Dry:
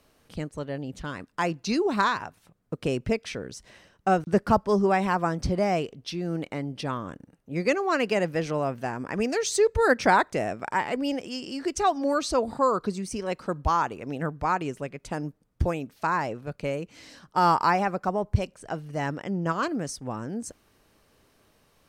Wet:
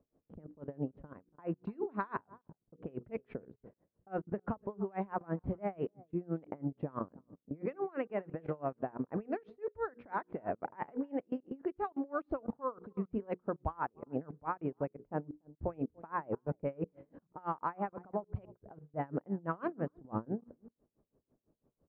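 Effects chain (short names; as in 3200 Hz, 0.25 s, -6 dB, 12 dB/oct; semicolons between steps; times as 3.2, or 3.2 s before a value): low shelf 99 Hz -10.5 dB; notches 60/120/180/240/300/360/420/480 Hz; echo 0.288 s -22.5 dB; compressor 4:1, threshold -27 dBFS, peak gain reduction 10.5 dB; air absorption 470 m; low-pass opened by the level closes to 430 Hz, open at -19.5 dBFS; level quantiser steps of 20 dB; dB-linear tremolo 6 Hz, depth 27 dB; gain +9 dB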